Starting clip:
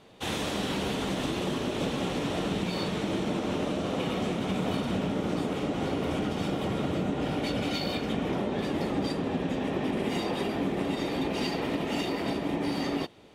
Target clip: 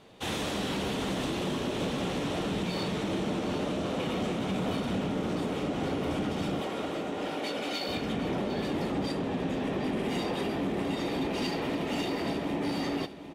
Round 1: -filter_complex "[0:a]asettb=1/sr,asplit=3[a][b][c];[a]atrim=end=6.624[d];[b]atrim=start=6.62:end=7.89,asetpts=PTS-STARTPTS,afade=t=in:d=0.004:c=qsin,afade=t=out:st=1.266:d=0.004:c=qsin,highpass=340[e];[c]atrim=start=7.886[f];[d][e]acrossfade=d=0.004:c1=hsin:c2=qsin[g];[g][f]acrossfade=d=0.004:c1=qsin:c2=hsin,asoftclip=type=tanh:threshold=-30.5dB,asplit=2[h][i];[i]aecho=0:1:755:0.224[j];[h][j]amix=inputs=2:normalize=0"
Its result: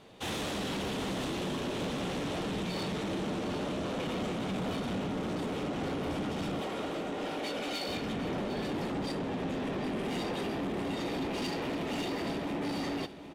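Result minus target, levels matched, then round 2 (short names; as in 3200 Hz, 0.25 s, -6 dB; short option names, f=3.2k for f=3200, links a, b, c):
soft clip: distortion +8 dB
-filter_complex "[0:a]asettb=1/sr,asplit=3[a][b][c];[a]atrim=end=6.624[d];[b]atrim=start=6.62:end=7.89,asetpts=PTS-STARTPTS,afade=t=in:d=0.004:c=qsin,afade=t=out:st=1.266:d=0.004:c=qsin,highpass=340[e];[c]atrim=start=7.886[f];[d][e]acrossfade=d=0.004:c1=hsin:c2=qsin[g];[g][f]acrossfade=d=0.004:c1=qsin:c2=hsin,asoftclip=type=tanh:threshold=-23dB,asplit=2[h][i];[i]aecho=0:1:755:0.224[j];[h][j]amix=inputs=2:normalize=0"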